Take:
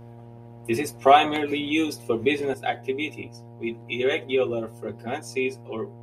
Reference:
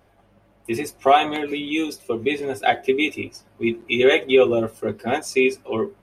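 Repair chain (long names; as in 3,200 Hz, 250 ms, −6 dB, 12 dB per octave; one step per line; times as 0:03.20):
hum removal 117.6 Hz, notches 8
level correction +8 dB, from 0:02.54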